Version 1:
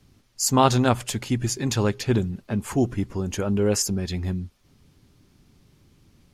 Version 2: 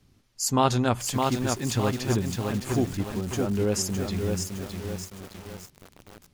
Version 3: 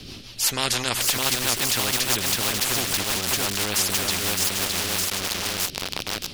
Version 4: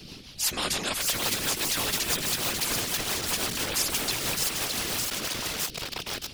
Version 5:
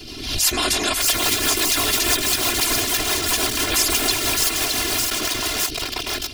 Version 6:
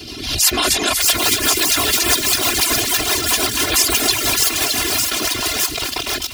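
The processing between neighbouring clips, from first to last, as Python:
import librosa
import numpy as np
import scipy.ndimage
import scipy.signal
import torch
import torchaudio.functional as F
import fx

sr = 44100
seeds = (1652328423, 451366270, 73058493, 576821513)

y1 = fx.echo_crushed(x, sr, ms=612, feedback_pct=55, bits=6, wet_db=-3.5)
y1 = F.gain(torch.from_numpy(y1), -4.0).numpy()
y2 = fx.band_shelf(y1, sr, hz=3700.0, db=10.0, octaves=1.3)
y2 = fx.rotary(y2, sr, hz=6.0)
y2 = fx.spectral_comp(y2, sr, ratio=4.0)
y3 = fx.whisperise(y2, sr, seeds[0])
y3 = F.gain(torch.from_numpy(y3), -4.5).numpy()
y4 = y3 + 0.85 * np.pad(y3, (int(2.9 * sr / 1000.0), 0))[:len(y3)]
y4 = fx.pre_swell(y4, sr, db_per_s=61.0)
y4 = F.gain(torch.from_numpy(y4), 5.5).numpy()
y5 = scipy.signal.sosfilt(scipy.signal.butter(2, 43.0, 'highpass', fs=sr, output='sos'), y4)
y5 = fx.dereverb_blind(y5, sr, rt60_s=0.74)
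y5 = fx.echo_thinned(y5, sr, ms=241, feedback_pct=57, hz=1100.0, wet_db=-10)
y5 = F.gain(torch.from_numpy(y5), 4.5).numpy()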